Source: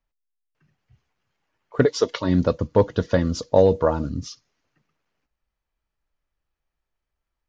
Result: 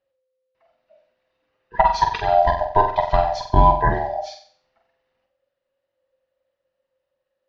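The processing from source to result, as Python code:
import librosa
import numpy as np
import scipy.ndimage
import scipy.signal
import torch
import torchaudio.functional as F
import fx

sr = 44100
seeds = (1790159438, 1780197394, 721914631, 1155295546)

p1 = fx.band_swap(x, sr, width_hz=500)
p2 = scipy.signal.sosfilt(scipy.signal.butter(4, 4700.0, 'lowpass', fs=sr, output='sos'), p1)
p3 = p2 + fx.room_flutter(p2, sr, wall_m=7.9, rt60_s=0.49, dry=0)
y = F.gain(torch.from_numpy(p3), 1.5).numpy()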